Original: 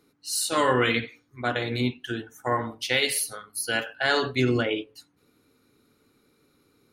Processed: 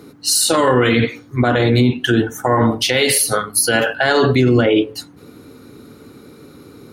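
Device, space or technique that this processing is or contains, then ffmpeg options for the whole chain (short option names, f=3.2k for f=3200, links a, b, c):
mastering chain: -af "highpass=56,equalizer=f=2.4k:t=o:w=0.27:g=-2.5,acompressor=threshold=-27dB:ratio=2,tiltshelf=f=970:g=4,alimiter=level_in=26dB:limit=-1dB:release=50:level=0:latency=1,volume=-4.5dB"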